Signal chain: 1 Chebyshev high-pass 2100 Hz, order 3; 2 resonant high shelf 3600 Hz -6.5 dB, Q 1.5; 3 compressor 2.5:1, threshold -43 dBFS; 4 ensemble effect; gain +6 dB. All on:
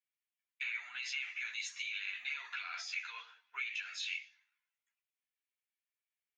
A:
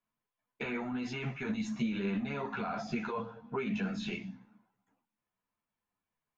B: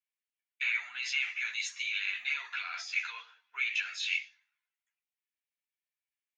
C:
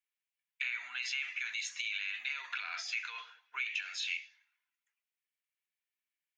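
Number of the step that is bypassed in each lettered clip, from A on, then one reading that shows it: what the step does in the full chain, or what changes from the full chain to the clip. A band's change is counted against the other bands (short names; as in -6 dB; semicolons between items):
1, 1 kHz band +17.0 dB; 3, mean gain reduction 5.0 dB; 4, loudness change +2.5 LU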